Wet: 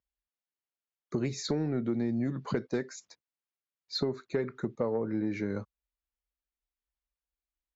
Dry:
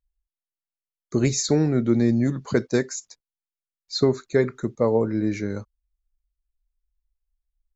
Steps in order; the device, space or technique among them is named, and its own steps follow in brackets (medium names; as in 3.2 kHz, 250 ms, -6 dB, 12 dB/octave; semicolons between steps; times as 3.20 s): AM radio (band-pass 110–3500 Hz; compression 5:1, threshold -27 dBFS, peak gain reduction 12 dB; saturation -18 dBFS, distortion -23 dB)